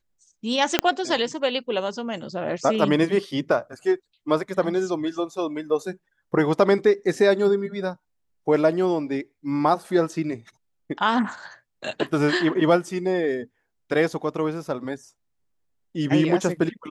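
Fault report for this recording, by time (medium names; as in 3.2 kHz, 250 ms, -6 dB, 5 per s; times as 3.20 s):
0.79 s: pop -2 dBFS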